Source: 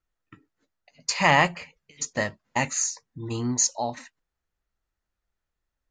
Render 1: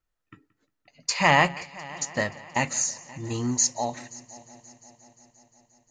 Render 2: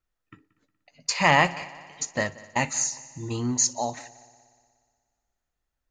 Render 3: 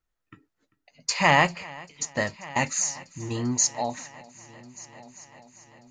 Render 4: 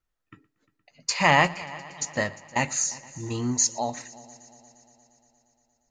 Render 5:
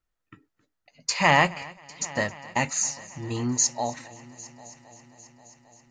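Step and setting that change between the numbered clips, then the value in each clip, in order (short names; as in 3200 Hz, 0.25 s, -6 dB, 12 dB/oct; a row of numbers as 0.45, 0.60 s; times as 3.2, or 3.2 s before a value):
multi-head echo, time: 176, 60, 394, 117, 267 ms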